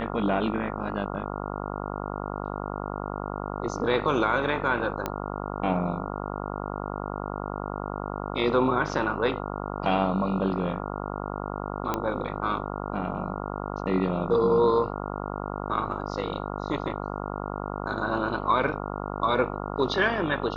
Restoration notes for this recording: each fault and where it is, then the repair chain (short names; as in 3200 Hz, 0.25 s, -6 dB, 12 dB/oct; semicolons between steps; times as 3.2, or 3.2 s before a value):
buzz 50 Hz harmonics 28 -33 dBFS
5.06 pop -13 dBFS
11.94 pop -12 dBFS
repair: de-click; de-hum 50 Hz, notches 28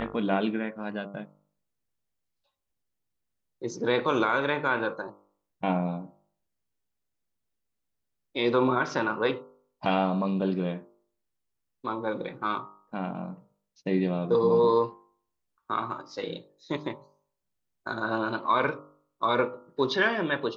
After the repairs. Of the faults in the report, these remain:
none